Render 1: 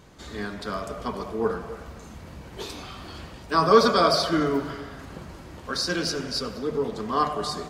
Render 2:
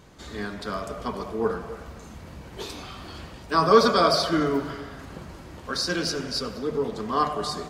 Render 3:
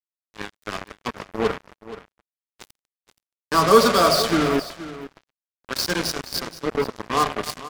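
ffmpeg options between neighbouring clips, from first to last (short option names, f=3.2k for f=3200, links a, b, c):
-af anull
-af "acrusher=bits=3:mix=0:aa=0.5,aecho=1:1:475:0.178,volume=2.5dB"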